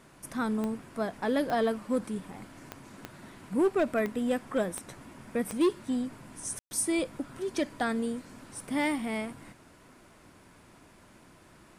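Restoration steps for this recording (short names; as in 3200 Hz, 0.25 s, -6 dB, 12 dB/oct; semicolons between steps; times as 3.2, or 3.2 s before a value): clip repair -20 dBFS; de-click; room tone fill 6.59–6.71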